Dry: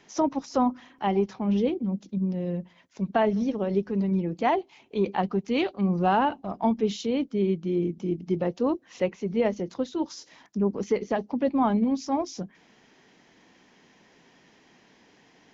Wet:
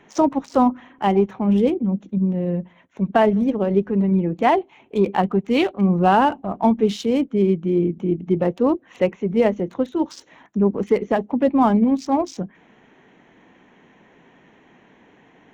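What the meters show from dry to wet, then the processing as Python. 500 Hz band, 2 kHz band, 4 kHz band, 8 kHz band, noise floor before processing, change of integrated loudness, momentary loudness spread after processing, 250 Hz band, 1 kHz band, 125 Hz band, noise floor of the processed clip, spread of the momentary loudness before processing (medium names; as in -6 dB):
+7.0 dB, +6.5 dB, +4.5 dB, no reading, -59 dBFS, +7.0 dB, 7 LU, +7.0 dB, +7.0 dB, +7.0 dB, -54 dBFS, 8 LU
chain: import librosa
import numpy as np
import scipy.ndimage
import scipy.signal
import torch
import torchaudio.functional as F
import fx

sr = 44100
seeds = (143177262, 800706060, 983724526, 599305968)

y = fx.wiener(x, sr, points=9)
y = y * 10.0 ** (7.0 / 20.0)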